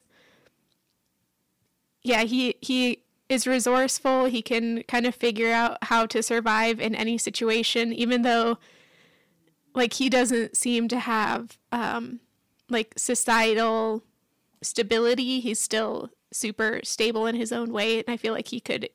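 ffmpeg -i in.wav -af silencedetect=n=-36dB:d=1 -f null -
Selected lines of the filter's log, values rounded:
silence_start: 0.00
silence_end: 2.05 | silence_duration: 2.05
silence_start: 8.55
silence_end: 9.75 | silence_duration: 1.20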